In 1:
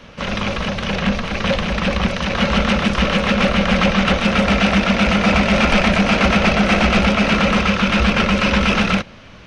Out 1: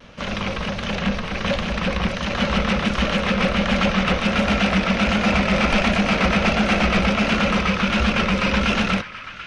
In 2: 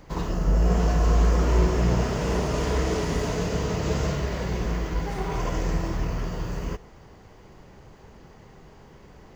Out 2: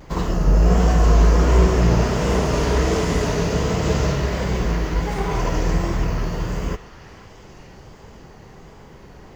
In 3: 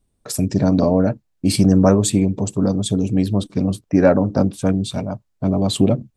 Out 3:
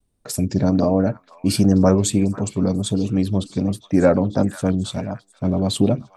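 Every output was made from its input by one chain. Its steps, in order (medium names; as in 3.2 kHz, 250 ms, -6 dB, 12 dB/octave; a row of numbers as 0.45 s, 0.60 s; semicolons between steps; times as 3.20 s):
repeats whose band climbs or falls 489 ms, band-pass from 1.5 kHz, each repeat 0.7 oct, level -11 dB; vibrato 1.4 Hz 56 cents; normalise loudness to -20 LUFS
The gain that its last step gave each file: -4.0 dB, +6.0 dB, -1.5 dB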